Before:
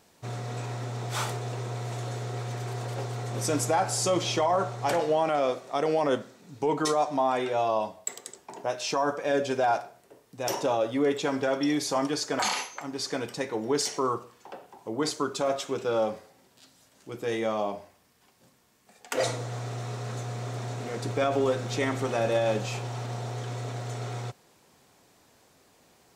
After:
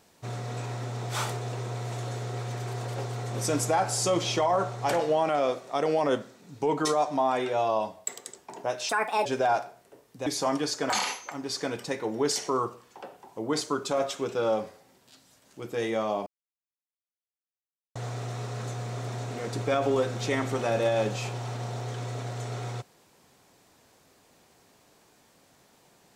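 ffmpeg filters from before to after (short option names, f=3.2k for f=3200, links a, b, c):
-filter_complex "[0:a]asplit=6[a][b][c][d][e][f];[a]atrim=end=8.894[g];[b]atrim=start=8.89:end=9.44,asetpts=PTS-STARTPTS,asetrate=66591,aresample=44100[h];[c]atrim=start=9.436:end=10.452[i];[d]atrim=start=11.758:end=17.76,asetpts=PTS-STARTPTS,afade=t=out:st=5.998:d=0.004:c=hsin[j];[e]atrim=start=17.76:end=19.45,asetpts=PTS-STARTPTS,volume=0[k];[f]atrim=start=19.45,asetpts=PTS-STARTPTS,afade=t=in:d=0.004:c=hsin[l];[g][h]acrossfade=d=0.004:c1=hsin:c2=hsin[m];[m][i]acrossfade=d=0.004:c1=hsin:c2=hsin[n];[j][k][l]concat=n=3:v=0:a=1[o];[n][o]acrossfade=d=0.004:c1=hsin:c2=hsin"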